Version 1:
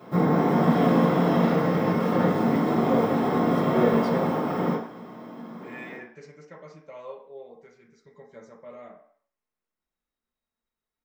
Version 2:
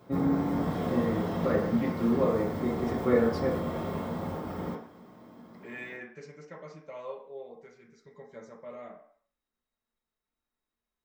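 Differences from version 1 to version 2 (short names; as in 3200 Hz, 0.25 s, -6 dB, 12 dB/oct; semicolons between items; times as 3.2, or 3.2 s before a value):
first voice: entry -0.70 s; background: send -11.5 dB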